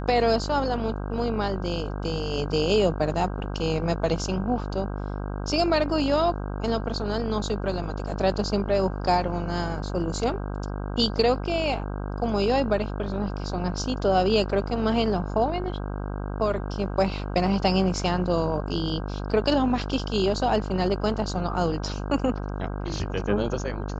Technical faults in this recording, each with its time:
buzz 50 Hz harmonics 32 -31 dBFS

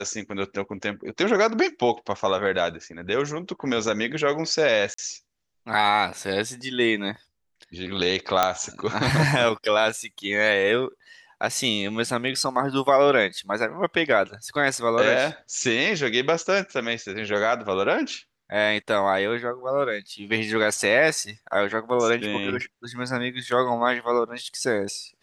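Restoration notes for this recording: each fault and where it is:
4.94–4.98 gap 44 ms
8.43 pop -4 dBFS

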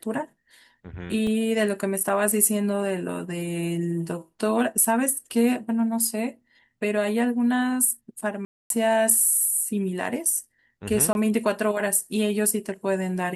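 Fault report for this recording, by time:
1.27 gap 2.6 ms
8.45–8.7 gap 0.252 s
11.13–11.15 gap 21 ms

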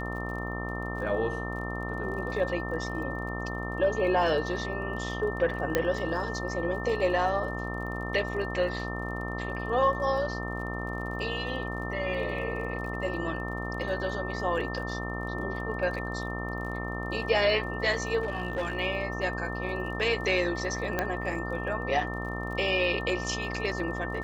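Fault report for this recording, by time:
buzz 60 Hz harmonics 22 -35 dBFS
crackle 34/s -40 dBFS
tone 1800 Hz -37 dBFS
5.75 pop -10 dBFS
18.22–18.77 clipped -26 dBFS
20.99 pop -13 dBFS

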